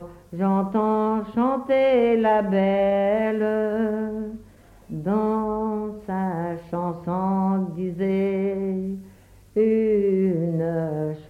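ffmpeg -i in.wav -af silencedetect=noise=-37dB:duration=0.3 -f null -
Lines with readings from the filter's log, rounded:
silence_start: 4.41
silence_end: 4.90 | silence_duration: 0.49
silence_start: 9.08
silence_end: 9.56 | silence_duration: 0.48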